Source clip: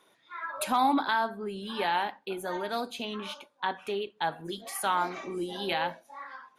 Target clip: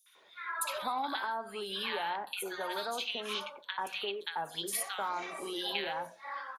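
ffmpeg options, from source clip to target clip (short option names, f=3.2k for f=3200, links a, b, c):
-filter_complex "[0:a]lowshelf=f=360:t=q:w=1.5:g=-11,acrossover=split=270|730[a][b][c];[a]acompressor=threshold=-54dB:ratio=4[d];[b]acompressor=threshold=-44dB:ratio=4[e];[c]acompressor=threshold=-37dB:ratio=4[f];[d][e][f]amix=inputs=3:normalize=0,equalizer=f=640:t=o:w=1.5:g=-7,bandreject=f=60:t=h:w=6,bandreject=f=120:t=h:w=6,bandreject=f=180:t=h:w=6,acrossover=split=1500|5800[g][h][i];[h]adelay=60[j];[g]adelay=150[k];[k][j][i]amix=inputs=3:normalize=0,volume=6.5dB"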